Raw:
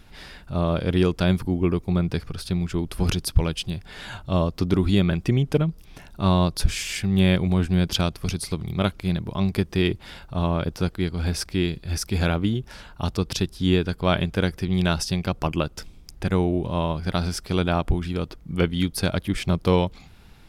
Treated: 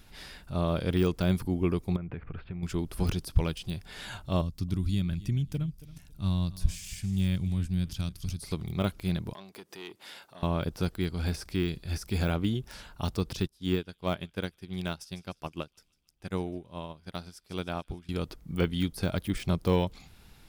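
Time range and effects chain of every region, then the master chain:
0:01.96–0:02.63: Butterworth low-pass 2,500 Hz + downward compressor 12 to 1, threshold −27 dBFS
0:04.41–0:08.41: drawn EQ curve 110 Hz 0 dB, 280 Hz −8 dB, 410 Hz −17 dB, 870 Hz −16 dB, 6,700 Hz −5 dB + repeating echo 276 ms, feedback 22%, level −18 dB
0:09.33–0:10.43: downward compressor 2 to 1, threshold −37 dBFS + high-pass filter 350 Hz + saturating transformer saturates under 1,300 Hz
0:13.47–0:18.09: low-shelf EQ 64 Hz −10 dB + delay with a high-pass on its return 151 ms, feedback 63%, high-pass 2,300 Hz, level −17 dB + expander for the loud parts 2.5 to 1, over −31 dBFS
whole clip: de-essing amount 90%; high-shelf EQ 5,200 Hz +8.5 dB; level −5.5 dB

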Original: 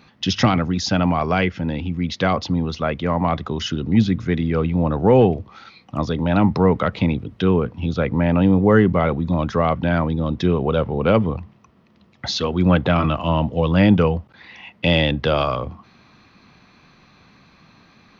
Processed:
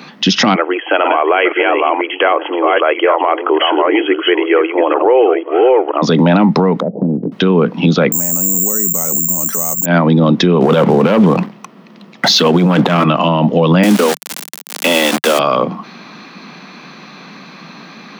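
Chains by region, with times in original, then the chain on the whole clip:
0:00.55–0:06.02: delay that plays each chunk backwards 488 ms, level −6 dB + linear-phase brick-wall band-pass 300–3,300 Hz
0:06.80–0:07.32: Butterworth low-pass 720 Hz 48 dB per octave + downward compressor 5 to 1, threshold −27 dBFS
0:08.12–0:09.86: low-pass filter 1,700 Hz 6 dB per octave + bad sample-rate conversion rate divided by 6×, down filtered, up zero stuff
0:10.61–0:13.04: leveller curve on the samples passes 2 + compressor whose output falls as the input rises −15 dBFS, ratio −0.5
0:13.83–0:15.39: linear delta modulator 64 kbit/s, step −24 dBFS + Butterworth high-pass 200 Hz 96 dB per octave + centre clipping without the shift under −22 dBFS
whole clip: Butterworth high-pass 160 Hz 48 dB per octave; downward compressor, threshold −21 dBFS; boost into a limiter +18.5 dB; level −1 dB

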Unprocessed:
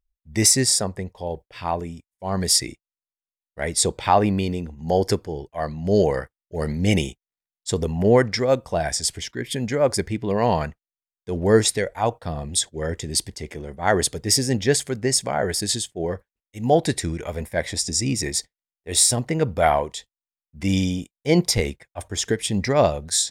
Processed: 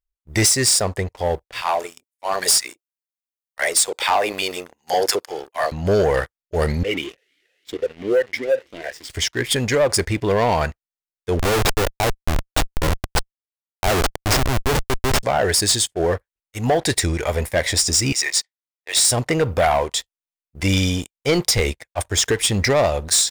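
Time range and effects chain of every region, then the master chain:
0:01.61–0:05.72: high-pass filter 530 Hz + high-shelf EQ 8,800 Hz +9 dB + multiband delay without the direct sound highs, lows 30 ms, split 750 Hz
0:06.83–0:09.10: converter with a step at zero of −30 dBFS + formant filter swept between two vowels e-i 2.9 Hz
0:11.39–0:15.23: high-shelf EQ 4,400 Hz −12 dB + comparator with hysteresis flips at −23 dBFS
0:18.12–0:19.05: high-pass filter 1,000 Hz + high-frequency loss of the air 52 metres
whole clip: parametric band 200 Hz −11 dB 1.5 octaves; downward compressor 4 to 1, threshold −22 dBFS; leveller curve on the samples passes 3

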